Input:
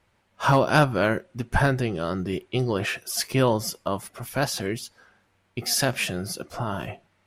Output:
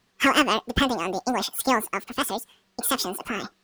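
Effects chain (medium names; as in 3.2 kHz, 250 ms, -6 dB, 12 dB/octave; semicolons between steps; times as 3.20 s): speed mistake 7.5 ips tape played at 15 ips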